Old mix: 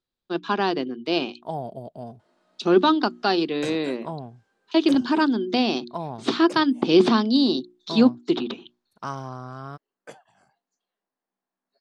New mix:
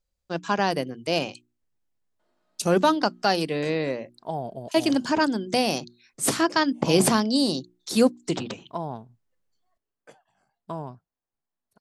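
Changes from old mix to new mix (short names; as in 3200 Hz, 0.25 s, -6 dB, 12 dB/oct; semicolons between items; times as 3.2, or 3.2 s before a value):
first voice: remove speaker cabinet 230–4400 Hz, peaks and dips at 240 Hz +8 dB, 360 Hz +9 dB, 560 Hz -8 dB, 1200 Hz +3 dB, 2000 Hz -4 dB, 3700 Hz +8 dB; second voice: entry +2.80 s; background -8.0 dB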